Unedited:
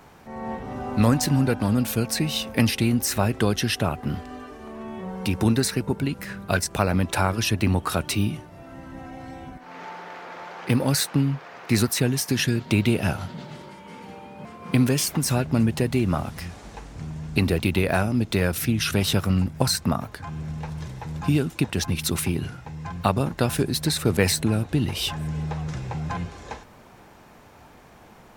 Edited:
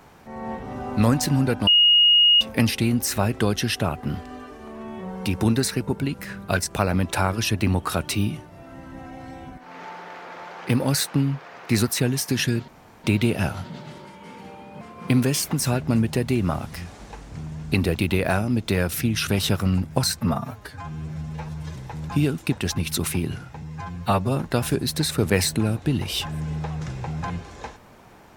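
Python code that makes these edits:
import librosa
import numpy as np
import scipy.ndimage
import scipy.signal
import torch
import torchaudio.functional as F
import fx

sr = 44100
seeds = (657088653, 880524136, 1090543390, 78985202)

y = fx.edit(x, sr, fx.bleep(start_s=1.67, length_s=0.74, hz=2870.0, db=-12.0),
    fx.insert_room_tone(at_s=12.68, length_s=0.36),
    fx.stretch_span(start_s=19.84, length_s=1.04, factor=1.5),
    fx.stretch_span(start_s=22.74, length_s=0.5, factor=1.5), tone=tone)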